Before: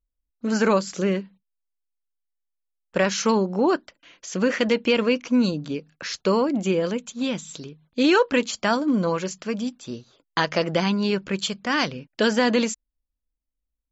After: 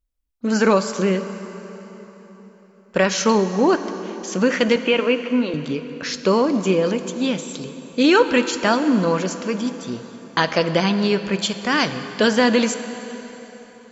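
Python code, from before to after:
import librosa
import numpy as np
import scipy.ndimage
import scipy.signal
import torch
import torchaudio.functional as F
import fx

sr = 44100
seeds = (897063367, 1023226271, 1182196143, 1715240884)

y = fx.cheby1_bandpass(x, sr, low_hz=280.0, high_hz=3100.0, order=3, at=(4.76, 5.54))
y = fx.rev_plate(y, sr, seeds[0], rt60_s=4.2, hf_ratio=0.8, predelay_ms=0, drr_db=9.5)
y = y * 10.0 ** (3.5 / 20.0)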